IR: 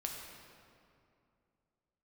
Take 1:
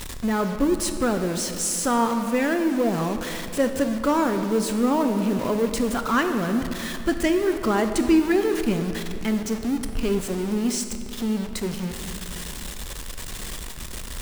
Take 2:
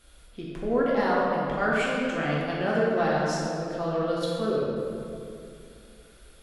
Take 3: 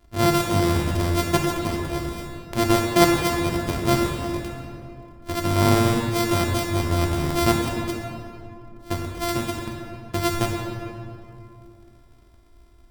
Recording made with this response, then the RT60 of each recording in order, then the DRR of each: 3; 2.6 s, 2.5 s, 2.5 s; 6.5 dB, -6.5 dB, 0.0 dB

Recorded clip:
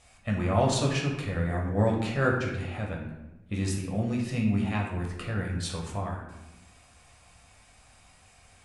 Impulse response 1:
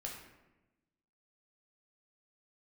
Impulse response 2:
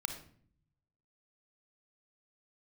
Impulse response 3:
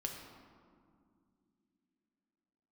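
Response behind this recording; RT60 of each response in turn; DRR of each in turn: 1; 1.0 s, 0.55 s, 2.4 s; -1.5 dB, 6.0 dB, 1.0 dB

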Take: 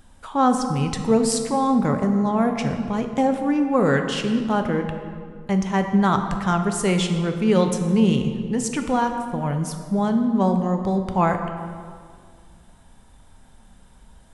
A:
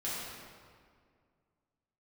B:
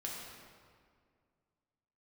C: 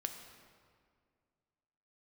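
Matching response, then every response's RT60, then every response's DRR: C; 2.1 s, 2.1 s, 2.1 s; -9.5 dB, -3.5 dB, 5.0 dB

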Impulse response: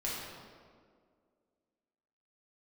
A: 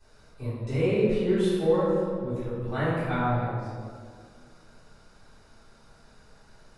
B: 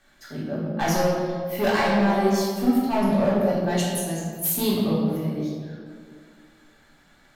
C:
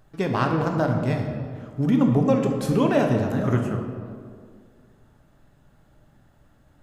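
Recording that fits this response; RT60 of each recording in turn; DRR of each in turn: B; 2.0 s, 2.0 s, 2.0 s; -17.0 dB, -7.0 dB, 2.5 dB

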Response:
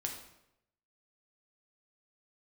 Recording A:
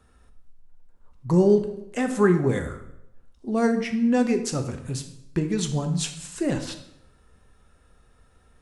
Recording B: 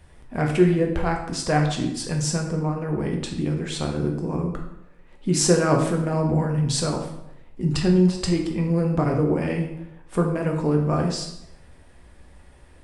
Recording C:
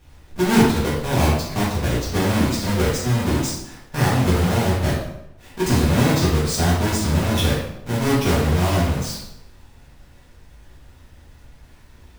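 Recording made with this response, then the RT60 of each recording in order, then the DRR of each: B; 0.85 s, 0.85 s, 0.85 s; 5.5 dB, 1.0 dB, -8.0 dB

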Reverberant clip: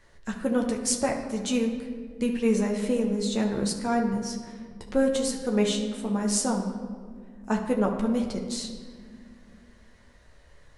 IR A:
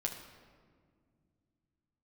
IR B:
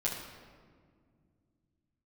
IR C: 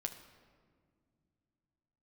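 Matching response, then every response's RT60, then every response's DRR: A; 1.9 s, 1.9 s, no single decay rate; 0.5 dB, -6.5 dB, 5.0 dB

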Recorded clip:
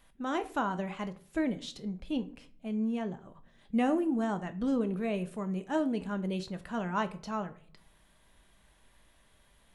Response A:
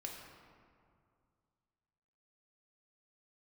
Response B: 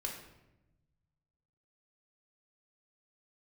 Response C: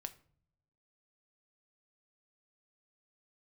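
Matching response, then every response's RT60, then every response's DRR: C; 2.3 s, 0.95 s, 0.55 s; -1.0 dB, -1.0 dB, 8.5 dB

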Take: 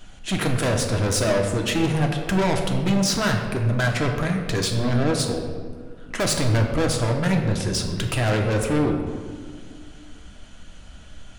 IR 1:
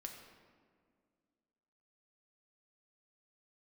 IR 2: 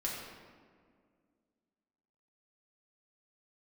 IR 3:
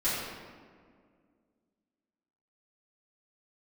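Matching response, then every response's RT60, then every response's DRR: 1; 2.0 s, 2.0 s, 2.0 s; 2.0 dB, -4.5 dB, -13.5 dB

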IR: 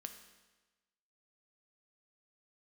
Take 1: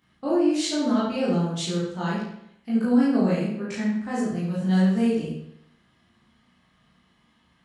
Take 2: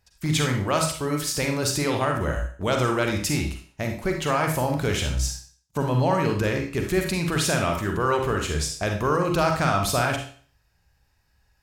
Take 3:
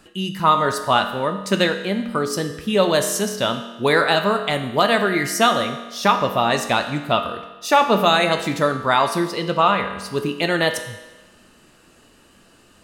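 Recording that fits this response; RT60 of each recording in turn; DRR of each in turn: 3; 0.75 s, 0.45 s, 1.2 s; -9.0 dB, 2.5 dB, 6.0 dB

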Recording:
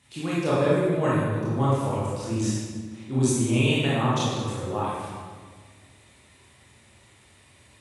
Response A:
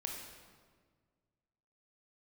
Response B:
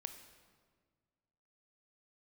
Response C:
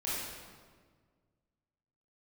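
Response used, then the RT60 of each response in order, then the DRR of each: C; 1.7 s, 1.7 s, 1.6 s; 0.5 dB, 7.5 dB, -9.0 dB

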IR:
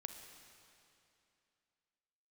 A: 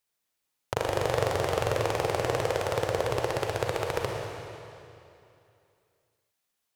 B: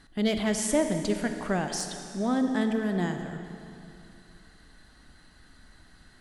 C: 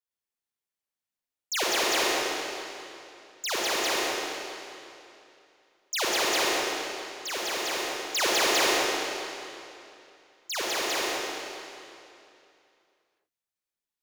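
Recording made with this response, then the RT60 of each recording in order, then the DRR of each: B; 2.7 s, 2.7 s, 2.7 s; 0.0 dB, 6.0 dB, -5.5 dB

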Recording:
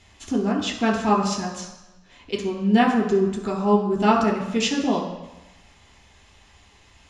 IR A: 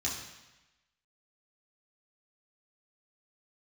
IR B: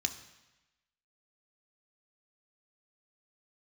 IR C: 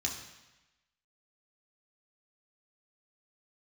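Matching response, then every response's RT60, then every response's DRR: C; 1.0 s, 1.0 s, 1.0 s; -5.5 dB, 7.0 dB, -1.0 dB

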